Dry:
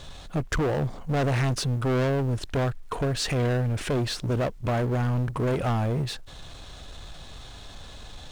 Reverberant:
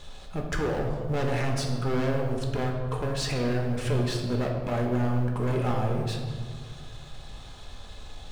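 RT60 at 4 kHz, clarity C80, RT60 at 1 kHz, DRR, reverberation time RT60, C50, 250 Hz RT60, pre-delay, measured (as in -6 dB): 0.95 s, 5.5 dB, 1.7 s, 0.5 dB, 1.7 s, 4.0 dB, 2.2 s, 4 ms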